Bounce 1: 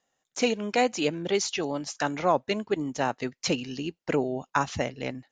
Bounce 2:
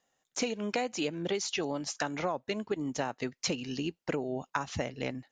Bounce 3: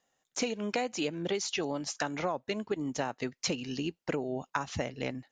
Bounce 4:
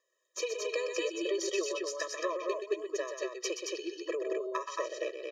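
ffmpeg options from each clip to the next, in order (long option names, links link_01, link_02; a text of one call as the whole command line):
ffmpeg -i in.wav -af "acompressor=threshold=-28dB:ratio=10" out.wav
ffmpeg -i in.wav -af anull out.wav
ffmpeg -i in.wav -af "aeval=exprs='0.178*(cos(1*acos(clip(val(0)/0.178,-1,1)))-cos(1*PI/2))+0.00398*(cos(6*acos(clip(val(0)/0.178,-1,1)))-cos(6*PI/2))':channel_layout=same,aecho=1:1:125.4|224.5:0.447|0.708,afftfilt=real='re*eq(mod(floor(b*sr/1024/330),2),1)':imag='im*eq(mod(floor(b*sr/1024/330),2),1)':win_size=1024:overlap=0.75" out.wav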